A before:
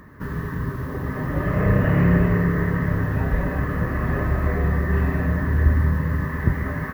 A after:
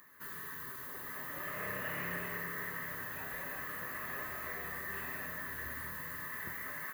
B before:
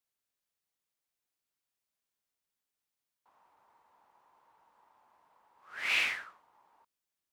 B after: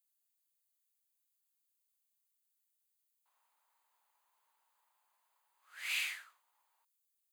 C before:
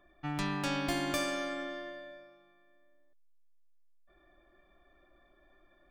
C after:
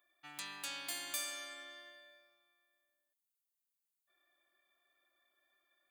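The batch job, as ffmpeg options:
-filter_complex "[0:a]aderivative,bandreject=frequency=5500:width=5.7,asplit=2[link_01][link_02];[link_02]asoftclip=type=tanh:threshold=-38.5dB,volume=-7dB[link_03];[link_01][link_03]amix=inputs=2:normalize=0"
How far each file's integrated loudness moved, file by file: −17.5, −7.0, −7.0 LU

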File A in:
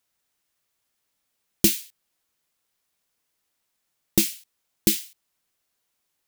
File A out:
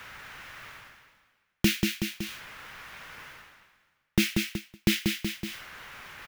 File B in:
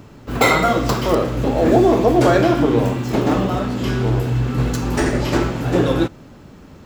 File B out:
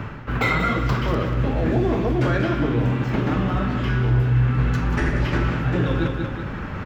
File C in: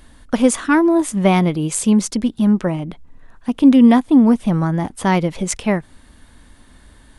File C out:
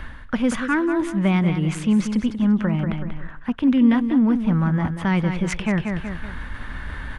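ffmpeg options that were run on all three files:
-filter_complex "[0:a]equalizer=frequency=4200:width_type=o:width=1:gain=-6,bandreject=frequency=700:width=20,acrossover=split=370|3000[link_01][link_02][link_03];[link_02]acompressor=threshold=-35dB:ratio=2[link_04];[link_01][link_04][link_03]amix=inputs=3:normalize=0,firequalizer=gain_entry='entry(120,0);entry(280,-7);entry(1500,6);entry(8000,-20)':delay=0.05:min_phase=1,aecho=1:1:187|374|561:0.316|0.0949|0.0285,areverse,acompressor=mode=upward:threshold=-16dB:ratio=2.5,areverse"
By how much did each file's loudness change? −6.0, −4.5, −5.0 LU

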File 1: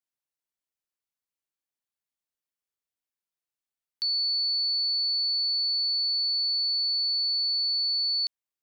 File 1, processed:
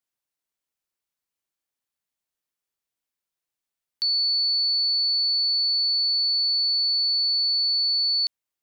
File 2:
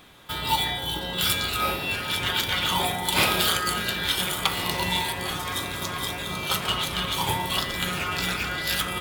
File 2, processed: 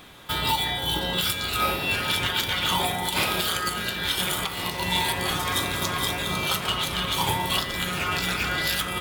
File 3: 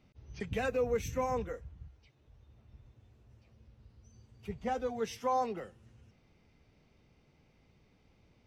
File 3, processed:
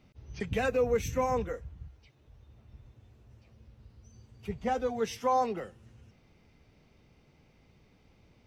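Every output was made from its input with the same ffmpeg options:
-af "alimiter=limit=-17dB:level=0:latency=1:release=448,volume=4dB"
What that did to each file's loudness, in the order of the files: +4.0, +0.5, +4.0 LU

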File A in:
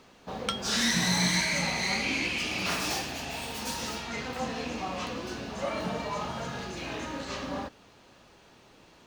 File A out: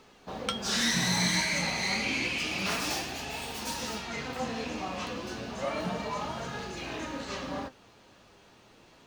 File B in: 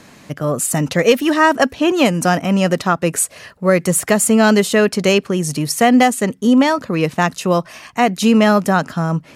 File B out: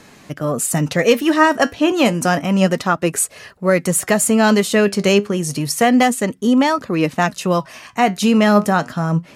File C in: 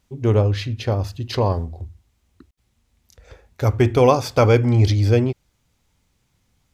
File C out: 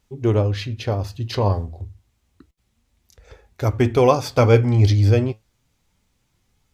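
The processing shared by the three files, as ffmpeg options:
-af "flanger=delay=2.3:depth=7.8:regen=71:speed=0.3:shape=sinusoidal,volume=3.5dB"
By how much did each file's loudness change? −1.0, −1.0, −0.5 LU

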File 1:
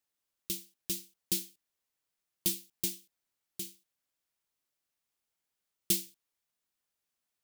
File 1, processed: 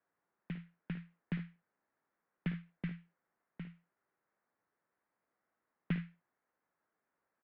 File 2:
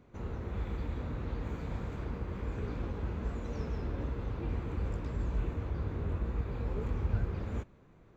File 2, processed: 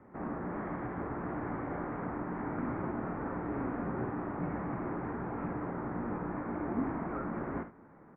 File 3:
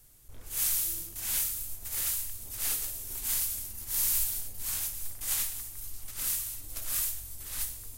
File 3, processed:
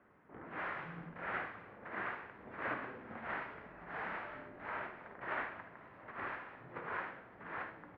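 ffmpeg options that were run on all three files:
-filter_complex "[0:a]asplit=2[link_01][link_02];[link_02]aecho=0:1:55|73:0.282|0.2[link_03];[link_01][link_03]amix=inputs=2:normalize=0,highpass=frequency=340:width_type=q:width=0.5412,highpass=frequency=340:width_type=q:width=1.307,lowpass=frequency=2000:width_type=q:width=0.5176,lowpass=frequency=2000:width_type=q:width=0.7071,lowpass=frequency=2000:width_type=q:width=1.932,afreqshift=-170,volume=9.5dB"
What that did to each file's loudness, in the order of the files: −9.5, 0.0, −13.0 LU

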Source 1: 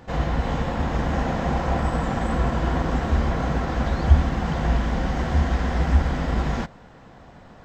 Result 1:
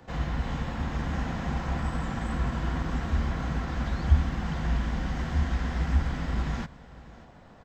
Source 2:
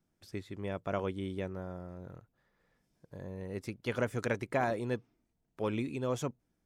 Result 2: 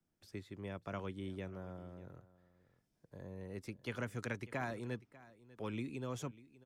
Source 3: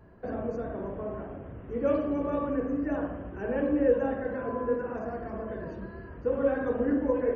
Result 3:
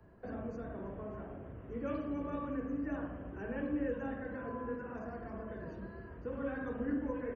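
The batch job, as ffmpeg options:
-filter_complex "[0:a]acrossover=split=120|330|890[link_01][link_02][link_03][link_04];[link_03]acompressor=threshold=-43dB:ratio=6[link_05];[link_01][link_02][link_05][link_04]amix=inputs=4:normalize=0,aecho=1:1:594:0.106,volume=-5.5dB"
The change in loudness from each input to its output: −6.5, −8.0, −10.0 LU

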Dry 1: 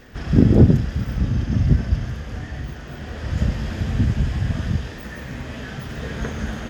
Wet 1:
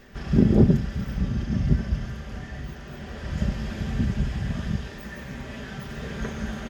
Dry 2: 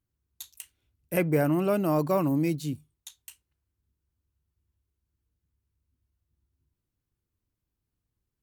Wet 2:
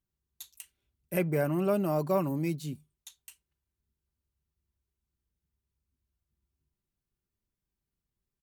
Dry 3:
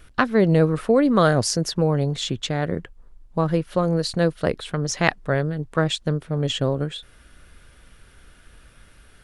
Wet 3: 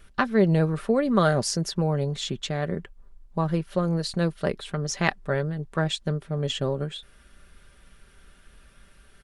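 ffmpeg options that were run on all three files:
-af "aecho=1:1:5.1:0.41,volume=-4.5dB"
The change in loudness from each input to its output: −5.0, −3.5, −4.0 LU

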